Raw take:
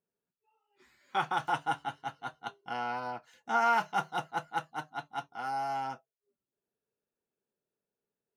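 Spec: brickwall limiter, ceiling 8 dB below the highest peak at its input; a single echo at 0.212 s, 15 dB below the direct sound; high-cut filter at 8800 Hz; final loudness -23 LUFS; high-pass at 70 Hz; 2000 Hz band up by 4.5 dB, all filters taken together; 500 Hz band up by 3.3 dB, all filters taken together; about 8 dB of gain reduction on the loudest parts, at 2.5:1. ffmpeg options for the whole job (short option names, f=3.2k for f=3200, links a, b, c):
-af "highpass=70,lowpass=8.8k,equalizer=f=500:t=o:g=4.5,equalizer=f=2k:t=o:g=7,acompressor=threshold=-32dB:ratio=2.5,alimiter=level_in=2dB:limit=-24dB:level=0:latency=1,volume=-2dB,aecho=1:1:212:0.178,volume=15dB"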